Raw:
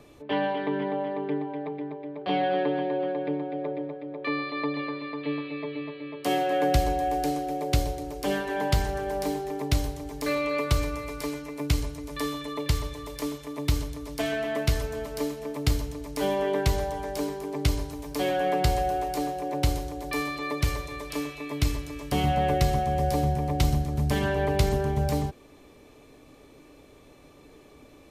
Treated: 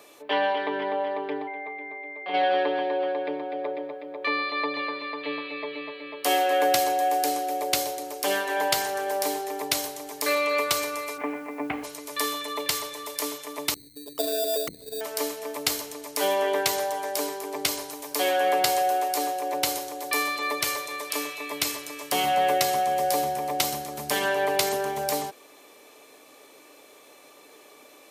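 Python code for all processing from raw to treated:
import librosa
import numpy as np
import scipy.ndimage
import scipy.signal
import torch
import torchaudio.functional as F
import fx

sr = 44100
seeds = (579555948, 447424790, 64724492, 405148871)

y = fx.lowpass(x, sr, hz=3000.0, slope=12, at=(1.47, 2.33), fade=0.02)
y = fx.dmg_tone(y, sr, hz=2100.0, level_db=-35.0, at=(1.47, 2.33), fade=0.02)
y = fx.comb_fb(y, sr, f0_hz=390.0, decay_s=0.32, harmonics='all', damping=0.0, mix_pct=60, at=(1.47, 2.33), fade=0.02)
y = fx.steep_lowpass(y, sr, hz=2400.0, slope=36, at=(11.17, 11.83), fade=0.02)
y = fx.small_body(y, sr, hz=(250.0, 760.0), ring_ms=70, db=14, at=(11.17, 11.83), fade=0.02)
y = fx.dmg_noise_colour(y, sr, seeds[0], colour='pink', level_db=-65.0, at=(11.17, 11.83), fade=0.02)
y = fx.chain(y, sr, fx.envelope_sharpen(power=3.0),
    fx.sample_hold(seeds[1], rate_hz=4200.0, jitter_pct=0),
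    fx.transformer_sat(knee_hz=160.0), at=(13.74, 15.01))
y = scipy.signal.sosfilt(scipy.signal.butter(2, 530.0, 'highpass', fs=sr, output='sos'), y)
y = fx.high_shelf(y, sr, hz=7200.0, db=9.5)
y = y * 10.0 ** (5.0 / 20.0)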